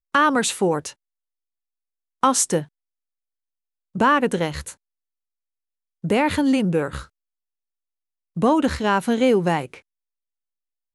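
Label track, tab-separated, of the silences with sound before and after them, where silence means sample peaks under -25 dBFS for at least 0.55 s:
0.890000	2.230000	silence
2.610000	3.960000	silence
4.690000	6.040000	silence
7.000000	8.370000	silence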